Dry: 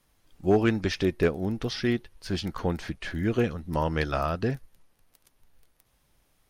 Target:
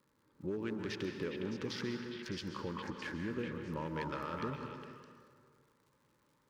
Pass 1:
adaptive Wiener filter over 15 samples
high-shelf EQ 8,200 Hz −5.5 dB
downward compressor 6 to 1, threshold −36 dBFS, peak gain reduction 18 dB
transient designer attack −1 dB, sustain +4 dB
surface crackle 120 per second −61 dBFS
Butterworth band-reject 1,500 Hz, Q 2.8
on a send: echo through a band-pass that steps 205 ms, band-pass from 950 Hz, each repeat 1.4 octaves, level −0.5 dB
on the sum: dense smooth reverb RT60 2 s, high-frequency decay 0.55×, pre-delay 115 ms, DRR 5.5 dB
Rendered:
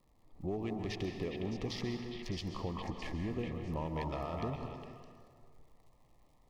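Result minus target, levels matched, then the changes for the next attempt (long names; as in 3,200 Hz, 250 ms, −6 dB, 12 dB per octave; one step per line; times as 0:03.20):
2,000 Hz band −5.0 dB; 125 Hz band +3.5 dB
add after downward compressor: high-pass filter 150 Hz 12 dB per octave
change: Butterworth band-reject 710 Hz, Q 2.8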